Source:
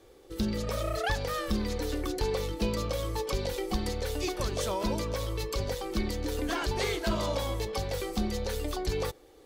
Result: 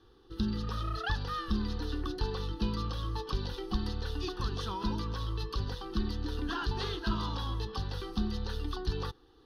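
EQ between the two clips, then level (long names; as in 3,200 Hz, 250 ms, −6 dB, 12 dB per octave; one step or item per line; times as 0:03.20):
high-frequency loss of the air 65 metres
phaser with its sweep stopped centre 2,200 Hz, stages 6
0.0 dB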